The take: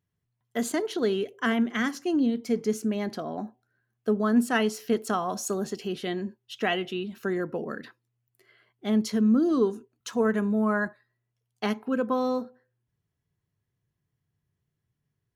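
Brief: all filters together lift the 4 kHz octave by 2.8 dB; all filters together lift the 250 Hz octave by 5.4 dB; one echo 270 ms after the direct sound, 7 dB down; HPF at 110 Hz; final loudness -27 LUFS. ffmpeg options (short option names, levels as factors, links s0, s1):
-af "highpass=110,equalizer=f=250:t=o:g=6.5,equalizer=f=4000:t=o:g=4,aecho=1:1:270:0.447,volume=0.631"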